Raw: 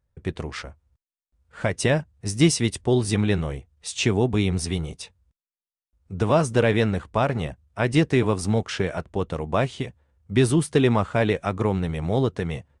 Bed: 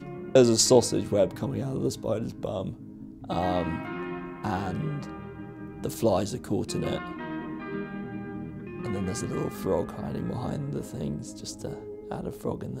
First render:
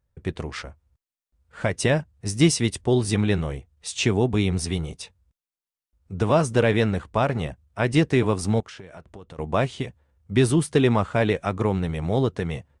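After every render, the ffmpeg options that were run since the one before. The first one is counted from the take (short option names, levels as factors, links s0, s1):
-filter_complex "[0:a]asettb=1/sr,asplit=3[s0][s1][s2];[s0]atrim=end=8.604[s3];[s1]atrim=start=8.6:end=9.39,asetpts=PTS-STARTPTS,afade=t=in:d=0.004:c=qsin,afade=t=out:st=0.786:d=0.004:c=qsin,acompressor=threshold=0.0112:ratio=6:attack=3.2:release=140:knee=1:detection=peak[s4];[s2]atrim=start=9.386[s5];[s3][s4]acrossfade=d=0.004:c1=hsin:c2=qsin[s6];[s6][s5]acrossfade=d=0.004:c1=qsin:c2=hsin"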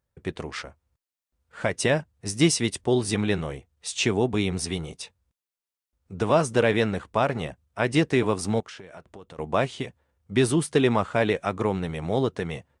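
-af "lowshelf=f=120:g=-11.5"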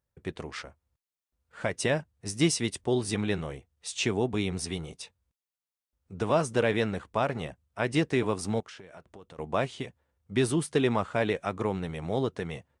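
-af "volume=0.596"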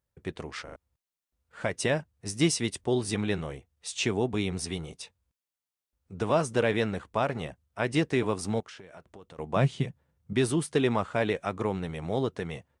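-filter_complex "[0:a]asettb=1/sr,asplit=3[s0][s1][s2];[s0]atrim=end=9.564[s3];[s1]atrim=start=9.56:end=10.33,asetpts=PTS-STARTPTS,afade=t=in:d=0.004:c=qsin,afade=t=out:st=0.766:d=0.004:c=qsin,equalizer=f=150:w=1.5:g=14.5[s4];[s2]atrim=start=10.326[s5];[s3][s4]acrossfade=d=0.004:c1=hsin:c2=qsin[s6];[s6][s5]acrossfade=d=0.004:c1=qsin:c2=hsin,asplit=4[s7][s8][s9][s10];[s7]atrim=end=0.682[s11];[s8]atrim=start=0.638:end=0.682[s12];[s9]atrim=start=0.638:end=0.682[s13];[s10]atrim=start=0.758[s14];[s11][s12]acrossfade=d=0.004:c1=hsin:c2=hsin[s15];[s15][s13]acrossfade=d=0.004:c1=hsin:c2=hsin[s16];[s16][s14]acrossfade=d=0.004:c1=hsin:c2=hsin"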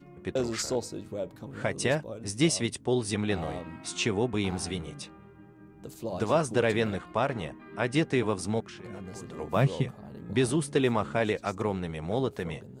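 -filter_complex "[1:a]volume=0.266[s0];[0:a][s0]amix=inputs=2:normalize=0"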